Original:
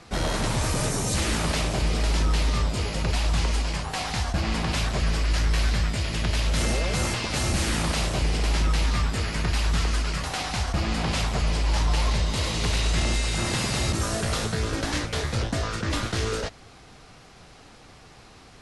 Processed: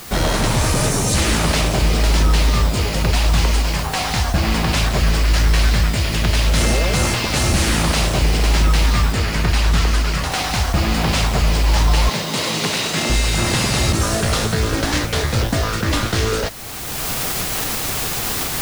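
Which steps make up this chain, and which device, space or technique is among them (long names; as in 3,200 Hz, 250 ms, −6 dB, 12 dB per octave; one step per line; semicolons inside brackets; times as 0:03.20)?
cheap recorder with automatic gain (white noise bed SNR 21 dB; camcorder AGC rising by 21 dB per second)
0:09.12–0:10.32: high-shelf EQ 7,700 Hz −4.5 dB
0:12.09–0:13.10: high-pass filter 150 Hz 24 dB per octave
level +8 dB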